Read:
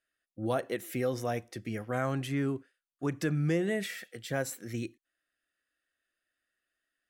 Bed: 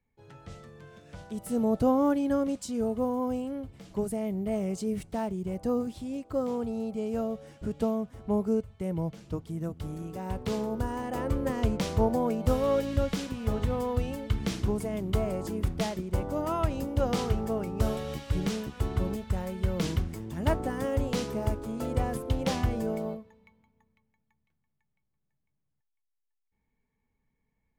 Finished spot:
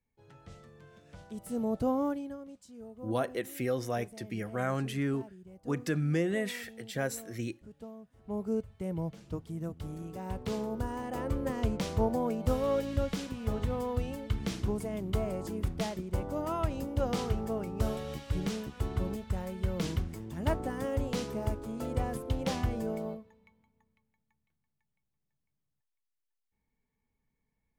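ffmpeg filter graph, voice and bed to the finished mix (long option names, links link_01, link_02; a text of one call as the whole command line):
ffmpeg -i stem1.wav -i stem2.wav -filter_complex "[0:a]adelay=2650,volume=-0.5dB[link_01];[1:a]volume=9dB,afade=type=out:start_time=2.01:duration=0.36:silence=0.237137,afade=type=in:start_time=8.13:duration=0.48:silence=0.188365[link_02];[link_01][link_02]amix=inputs=2:normalize=0" out.wav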